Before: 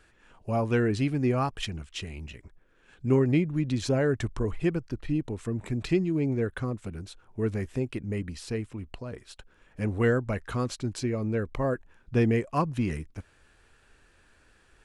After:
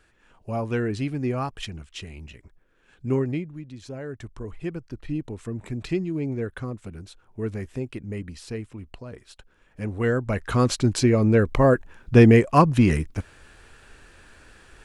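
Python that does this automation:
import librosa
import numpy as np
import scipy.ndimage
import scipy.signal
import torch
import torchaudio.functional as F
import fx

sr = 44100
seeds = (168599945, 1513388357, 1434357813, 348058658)

y = fx.gain(x, sr, db=fx.line((3.2, -1.0), (3.7, -13.0), (5.13, -1.0), (9.98, -1.0), (10.7, 10.5)))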